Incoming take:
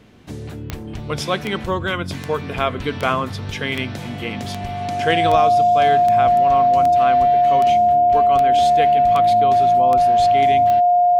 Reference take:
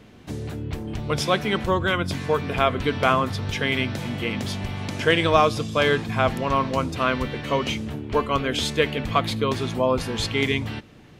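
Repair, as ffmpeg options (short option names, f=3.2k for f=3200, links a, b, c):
-af "adeclick=t=4,bandreject=f=710:w=30,asetnsamples=n=441:p=0,asendcmd='5.35 volume volume 3.5dB',volume=0dB"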